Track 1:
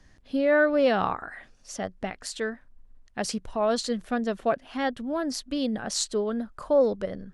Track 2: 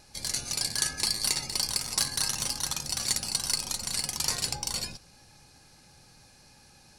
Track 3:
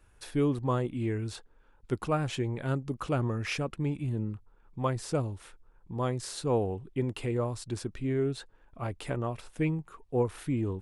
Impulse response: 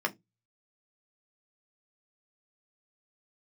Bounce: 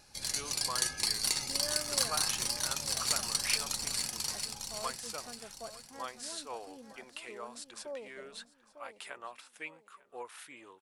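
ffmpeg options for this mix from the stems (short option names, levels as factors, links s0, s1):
-filter_complex "[0:a]lowpass=1500,lowshelf=f=430:g=-8,adelay=1150,volume=0.133,asplit=2[s0][s1];[s1]volume=0.299[s2];[1:a]volume=0.668,afade=t=out:st=3.87:d=0.56:silence=0.375837,asplit=2[s3][s4];[s4]volume=0.398[s5];[2:a]highpass=1100,volume=0.841,asplit=2[s6][s7];[s7]volume=0.0794[s8];[s2][s5][s8]amix=inputs=3:normalize=0,aecho=0:1:899|1798|2697|3596|4495:1|0.32|0.102|0.0328|0.0105[s9];[s0][s3][s6][s9]amix=inputs=4:normalize=0,lowshelf=f=330:g=-3.5"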